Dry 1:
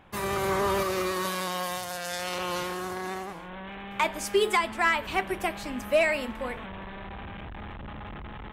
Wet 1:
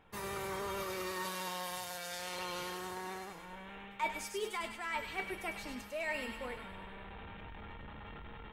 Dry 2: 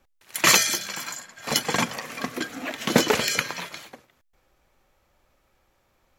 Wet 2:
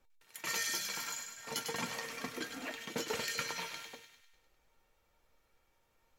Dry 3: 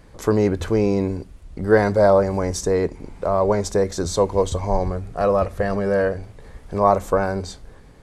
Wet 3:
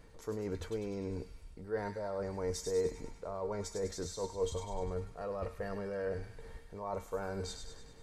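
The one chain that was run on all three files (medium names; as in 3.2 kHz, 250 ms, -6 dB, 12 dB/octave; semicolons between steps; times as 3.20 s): reverse; compression 12:1, threshold -26 dBFS; reverse; feedback comb 460 Hz, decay 0.18 s, harmonics all, mix 80%; feedback echo behind a high-pass 100 ms, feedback 56%, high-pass 1.9 kHz, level -5 dB; trim +2.5 dB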